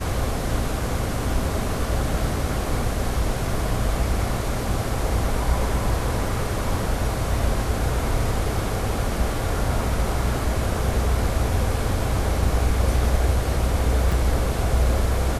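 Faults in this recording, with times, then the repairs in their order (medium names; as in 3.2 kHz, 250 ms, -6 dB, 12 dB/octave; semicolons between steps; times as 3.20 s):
14.12 s: dropout 3.9 ms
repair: interpolate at 14.12 s, 3.9 ms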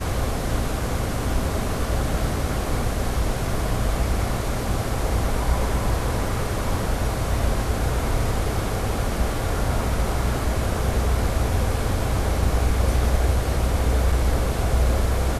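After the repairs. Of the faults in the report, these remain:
nothing left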